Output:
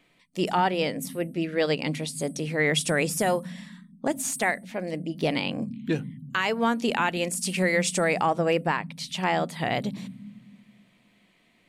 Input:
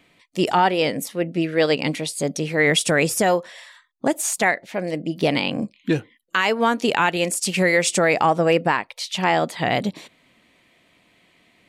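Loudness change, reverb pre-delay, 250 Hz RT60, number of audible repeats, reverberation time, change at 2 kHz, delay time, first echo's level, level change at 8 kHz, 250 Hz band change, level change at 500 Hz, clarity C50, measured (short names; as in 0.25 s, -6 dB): -5.5 dB, 3 ms, 2.2 s, none, 1.5 s, -6.0 dB, none, none, -5.5 dB, -4.5 dB, -6.0 dB, 14.0 dB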